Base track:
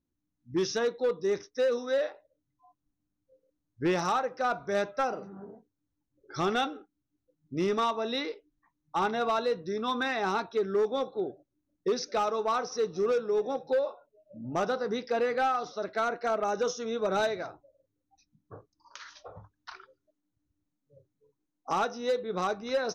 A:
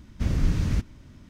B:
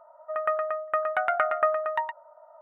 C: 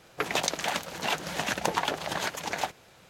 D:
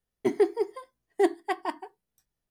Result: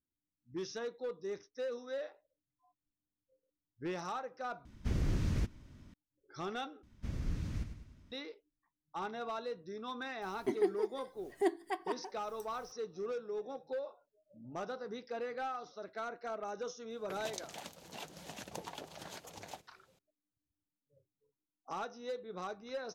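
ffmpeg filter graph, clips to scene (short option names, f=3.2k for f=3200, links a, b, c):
-filter_complex "[1:a]asplit=2[a][b];[0:a]volume=-12dB[c];[a]aeval=exprs='0.126*(abs(mod(val(0)/0.126+3,4)-2)-1)':c=same[d];[b]aecho=1:1:102|204|306|408|510:0.355|0.163|0.0751|0.0345|0.0159[e];[4:a]acompressor=mode=upward:threshold=-29dB:ratio=2.5:attack=3.2:release=140:knee=2.83:detection=peak[f];[3:a]equalizer=f=1.6k:w=0.76:g=-8.5[g];[c]asplit=3[h][i][j];[h]atrim=end=4.654[k];[d]atrim=end=1.29,asetpts=PTS-STARTPTS,volume=-7.5dB[l];[i]atrim=start=5.936:end=6.834[m];[e]atrim=end=1.29,asetpts=PTS-STARTPTS,volume=-14.5dB[n];[j]atrim=start=8.116[o];[f]atrim=end=2.5,asetpts=PTS-STARTPTS,volume=-8.5dB,afade=t=in:d=0.004:c=hsin,afade=t=out:st=2.496:d=0.004:c=hsin,adelay=10220[p];[g]atrim=end=3.09,asetpts=PTS-STARTPTS,volume=-14dB,afade=t=in:d=0.004:c=hsin,afade=t=out:st=3.086:d=0.004:c=hsin,adelay=16900[q];[k][l]acrossfade=d=0.004:c1=hsin:c2=hsin[r];[r][m]acrossfade=d=0.004:c1=hsin:c2=hsin[s];[s][n]acrossfade=d=0.004:c1=hsin:c2=hsin[t];[t][o]acrossfade=d=0.004:c1=hsin:c2=hsin[u];[u][p][q]amix=inputs=3:normalize=0"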